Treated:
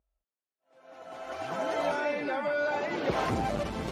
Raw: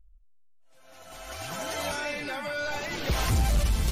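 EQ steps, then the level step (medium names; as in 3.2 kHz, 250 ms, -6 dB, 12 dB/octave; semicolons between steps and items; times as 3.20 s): high-pass 270 Hz 6 dB/octave; band-pass filter 400 Hz, Q 0.58; +7.0 dB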